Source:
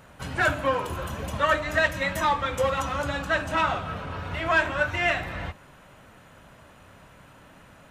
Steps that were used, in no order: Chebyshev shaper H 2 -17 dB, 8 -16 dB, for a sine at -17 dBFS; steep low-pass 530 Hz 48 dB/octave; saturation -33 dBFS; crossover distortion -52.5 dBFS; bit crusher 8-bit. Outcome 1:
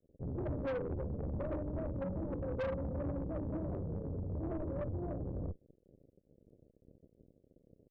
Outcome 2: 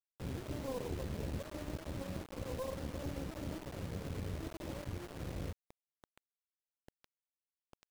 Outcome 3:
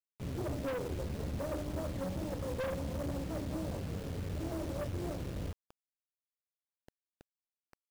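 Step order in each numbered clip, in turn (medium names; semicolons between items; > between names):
crossover distortion > bit crusher > Chebyshev shaper > steep low-pass > saturation; saturation > steep low-pass > Chebyshev shaper > crossover distortion > bit crusher; crossover distortion > steep low-pass > saturation > Chebyshev shaper > bit crusher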